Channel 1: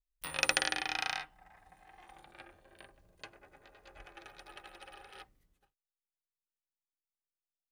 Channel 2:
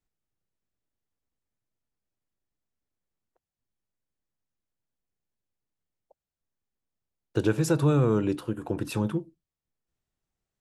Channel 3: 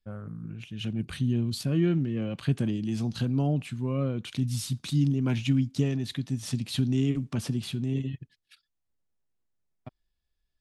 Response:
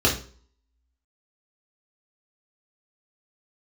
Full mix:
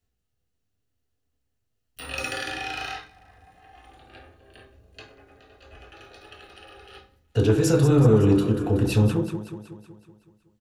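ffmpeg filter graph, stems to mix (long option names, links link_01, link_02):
-filter_complex "[0:a]asoftclip=type=tanh:threshold=-25dB,adelay=1750,volume=-4.5dB,asplit=3[link_01][link_02][link_03];[link_02]volume=-7dB[link_04];[link_03]volume=-18dB[link_05];[1:a]alimiter=limit=-16.5dB:level=0:latency=1:release=10,volume=2.5dB,asplit=3[link_06][link_07][link_08];[link_07]volume=-15.5dB[link_09];[link_08]volume=-7dB[link_10];[3:a]atrim=start_sample=2205[link_11];[link_04][link_09]amix=inputs=2:normalize=0[link_12];[link_12][link_11]afir=irnorm=-1:irlink=0[link_13];[link_05][link_10]amix=inputs=2:normalize=0,aecho=0:1:187|374|561|748|935|1122|1309|1496:1|0.56|0.314|0.176|0.0983|0.0551|0.0308|0.0173[link_14];[link_01][link_06][link_13][link_14]amix=inputs=4:normalize=0,asoftclip=type=tanh:threshold=-8.5dB"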